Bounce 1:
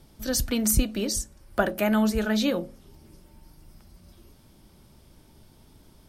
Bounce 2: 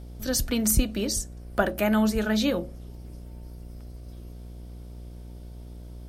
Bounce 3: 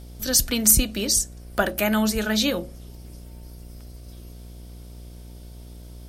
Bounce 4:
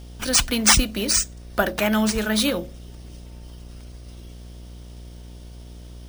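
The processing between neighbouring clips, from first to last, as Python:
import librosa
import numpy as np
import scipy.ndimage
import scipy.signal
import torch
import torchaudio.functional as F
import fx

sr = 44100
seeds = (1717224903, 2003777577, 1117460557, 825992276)

y1 = fx.dmg_buzz(x, sr, base_hz=60.0, harmonics=12, level_db=-41.0, tilt_db=-8, odd_only=False)
y2 = fx.high_shelf(y1, sr, hz=2100.0, db=9.5)
y3 = np.repeat(y2[::3], 3)[:len(y2)]
y3 = y3 * 10.0 ** (1.0 / 20.0)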